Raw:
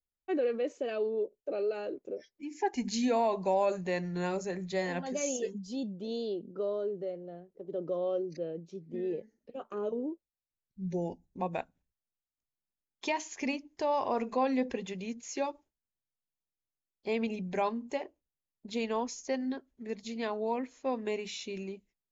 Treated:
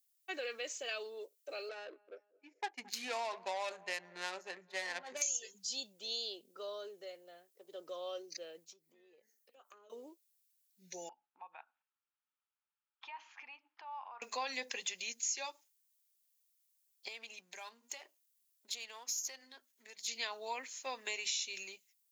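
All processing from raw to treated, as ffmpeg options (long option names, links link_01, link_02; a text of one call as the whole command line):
ffmpeg -i in.wav -filter_complex "[0:a]asettb=1/sr,asplit=3[link_01][link_02][link_03];[link_01]atrim=end=1.694[link_04];[link_02]atrim=start=1.69:end=5.22,asetpts=PTS-STARTPTS,afade=type=in:duration=0.004:curve=qsin,afade=type=out:start_time=3.526:duration=0.004:curve=qsin,agate=range=-33dB:threshold=-38dB:ratio=3:release=100:detection=peak,asplit=2[link_05][link_06];[link_06]adelay=219,lowpass=frequency=3200:poles=1,volume=-22dB,asplit=2[link_07][link_08];[link_08]adelay=219,lowpass=frequency=3200:poles=1,volume=0.54,asplit=2[link_09][link_10];[link_10]adelay=219,lowpass=frequency=3200:poles=1,volume=0.54,asplit=2[link_11][link_12];[link_12]adelay=219,lowpass=frequency=3200:poles=1,volume=0.54[link_13];[link_05][link_07][link_09][link_11][link_13]amix=inputs=5:normalize=0,atrim=end_sample=155673,adynamicsmooth=sensitivity=3.5:basefreq=1100[link_14];[link_03]atrim=start=5.216[link_15];[link_04][link_14]acrossfade=duration=0.004:curve1=hsin:curve2=qsin[link_16];[link_16][link_15]acrossfade=duration=0.004:curve1=qsin:curve2=hsin,asettb=1/sr,asplit=3[link_17][link_18][link_19];[link_17]atrim=end=8.644[link_20];[link_18]atrim=start=8.64:end=9.9,asetpts=PTS-STARTPTS,afade=type=in:duration=0.004:curve=qsin,afade=type=out:start_time=1.256:duration=0.004:curve=qsin,equalizer=frequency=3900:width=0.47:gain=-6,acompressor=threshold=-52dB:ratio=4:attack=3.2:release=140:knee=1:detection=peak[link_21];[link_19]atrim=start=9.896[link_22];[link_20][link_21]acrossfade=duration=0.004:curve1=hsin:curve2=qsin[link_23];[link_23][link_22]acrossfade=duration=0.004:curve1=qsin:curve2=hsin,asettb=1/sr,asplit=3[link_24][link_25][link_26];[link_24]atrim=end=11.094[link_27];[link_25]atrim=start=11.09:end=14.22,asetpts=PTS-STARTPTS,afade=type=in:duration=0.004:curve=qsin,afade=type=out:start_time=3.126:duration=0.004:curve=qsin,acompressor=threshold=-47dB:ratio=4:attack=3.2:release=140:knee=1:detection=peak,highpass=360,equalizer=frequency=410:width_type=q:width=4:gain=-9,equalizer=frequency=580:width_type=q:width=4:gain=-7,equalizer=frequency=860:width_type=q:width=4:gain=10,equalizer=frequency=1300:width_type=q:width=4:gain=9,equalizer=frequency=2000:width_type=q:width=4:gain=-7,lowpass=frequency=2500:width=0.5412,lowpass=frequency=2500:width=1.3066[link_28];[link_26]atrim=start=14.216[link_29];[link_27][link_28]acrossfade=duration=0.004:curve1=hsin:curve2=qsin[link_30];[link_30][link_29]acrossfade=duration=0.004:curve1=qsin:curve2=hsin,asettb=1/sr,asplit=3[link_31][link_32][link_33];[link_31]atrim=end=17.084[link_34];[link_32]atrim=start=17.08:end=20.08,asetpts=PTS-STARTPTS,afade=type=in:duration=0.004:curve=qsin,afade=type=out:start_time=2.996:duration=0.004:curve=qsin,aeval=exprs='if(lt(val(0),0),0.708*val(0),val(0))':channel_layout=same,bandreject=frequency=50:width_type=h:width=6,bandreject=frequency=100:width_type=h:width=6,bandreject=frequency=150:width_type=h:width=6,bandreject=frequency=200:width_type=h:width=6,bandreject=frequency=250:width_type=h:width=6,acompressor=threshold=-47dB:ratio=2.5:attack=3.2:release=140:knee=1:detection=peak[link_35];[link_33]atrim=start=20.076[link_36];[link_34][link_35]acrossfade=duration=0.004:curve1=hsin:curve2=qsin[link_37];[link_37][link_36]acrossfade=duration=0.004:curve1=qsin:curve2=hsin,highpass=frequency=790:poles=1,aderivative,acompressor=threshold=-50dB:ratio=6,volume=16dB" out.wav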